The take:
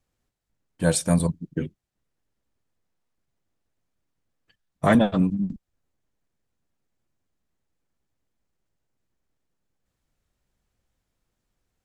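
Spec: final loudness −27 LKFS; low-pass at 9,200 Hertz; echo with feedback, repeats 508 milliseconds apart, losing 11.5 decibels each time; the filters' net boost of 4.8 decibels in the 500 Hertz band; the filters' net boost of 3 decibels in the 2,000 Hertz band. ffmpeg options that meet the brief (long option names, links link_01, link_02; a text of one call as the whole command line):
ffmpeg -i in.wav -af "lowpass=9200,equalizer=frequency=500:width_type=o:gain=5.5,equalizer=frequency=2000:width_type=o:gain=3.5,aecho=1:1:508|1016|1524:0.266|0.0718|0.0194,volume=-5dB" out.wav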